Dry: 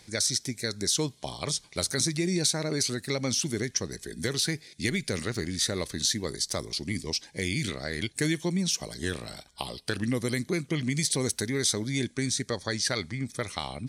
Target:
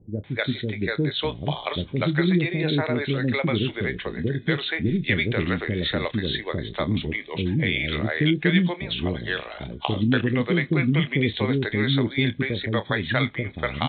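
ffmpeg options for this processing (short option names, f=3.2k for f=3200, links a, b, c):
-filter_complex "[0:a]asplit=2[a][b];[b]adelay=28,volume=-13dB[c];[a][c]amix=inputs=2:normalize=0,acrossover=split=430[d][e];[e]adelay=240[f];[d][f]amix=inputs=2:normalize=0,aresample=8000,aresample=44100,volume=8.5dB"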